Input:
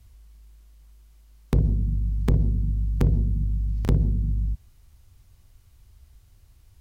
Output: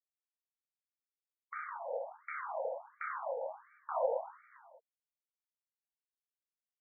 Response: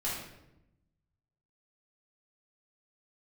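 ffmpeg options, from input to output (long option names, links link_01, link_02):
-filter_complex "[0:a]asplit=3[link_01][link_02][link_03];[link_02]asetrate=58866,aresample=44100,atempo=0.749154,volume=-16dB[link_04];[link_03]asetrate=88200,aresample=44100,atempo=0.5,volume=-14dB[link_05];[link_01][link_04][link_05]amix=inputs=3:normalize=0,areverse,acompressor=threshold=-28dB:ratio=16,areverse,highshelf=frequency=2000:gain=2.5,aresample=11025,acrusher=bits=3:mix=0:aa=0.5,aresample=44100[link_06];[1:a]atrim=start_sample=2205,afade=type=out:start_time=0.23:duration=0.01,atrim=end_sample=10584,asetrate=33075,aresample=44100[link_07];[link_06][link_07]afir=irnorm=-1:irlink=0,afftfilt=real='re*between(b*sr/1024,660*pow(1700/660,0.5+0.5*sin(2*PI*1.4*pts/sr))/1.41,660*pow(1700/660,0.5+0.5*sin(2*PI*1.4*pts/sr))*1.41)':imag='im*between(b*sr/1024,660*pow(1700/660,0.5+0.5*sin(2*PI*1.4*pts/sr))/1.41,660*pow(1700/660,0.5+0.5*sin(2*PI*1.4*pts/sr))*1.41)':win_size=1024:overlap=0.75,volume=15dB"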